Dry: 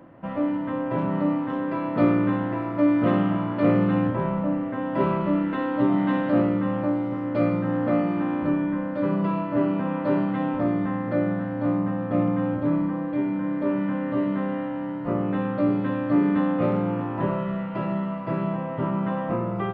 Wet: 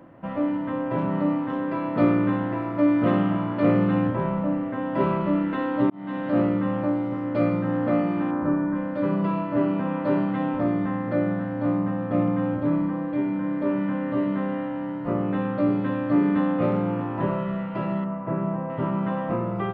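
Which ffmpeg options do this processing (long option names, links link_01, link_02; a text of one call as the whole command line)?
ffmpeg -i in.wav -filter_complex "[0:a]asplit=3[link_01][link_02][link_03];[link_01]afade=type=out:start_time=8.3:duration=0.02[link_04];[link_02]highshelf=frequency=2000:width_type=q:width=1.5:gain=-9.5,afade=type=in:start_time=8.3:duration=0.02,afade=type=out:start_time=8.74:duration=0.02[link_05];[link_03]afade=type=in:start_time=8.74:duration=0.02[link_06];[link_04][link_05][link_06]amix=inputs=3:normalize=0,asettb=1/sr,asplit=3[link_07][link_08][link_09];[link_07]atrim=end=18.044[link_10];[link_08]atrim=start=18.04:end=18.7,asetpts=PTS-STARTPTS,afade=type=in:duration=0.004:curve=qsin,afade=type=out:start_time=0.656:duration=0.004:curve=qsin,lowpass=1600[link_11];[link_09]atrim=start=18.696[link_12];[link_10][link_11]acrossfade=duration=0.004:curve1=hsin:curve2=qsin[link_13];[link_13][link_12]acrossfade=duration=0.004:curve1=qsin:curve2=hsin,asplit=2[link_14][link_15];[link_14]atrim=end=5.9,asetpts=PTS-STARTPTS,afade=type=out:start_time=5.896:duration=0.004:curve=hsin[link_16];[link_15]atrim=start=5.9,asetpts=PTS-STARTPTS,afade=type=in:duration=0.53[link_17];[link_16][link_17]concat=n=2:v=0:a=1" out.wav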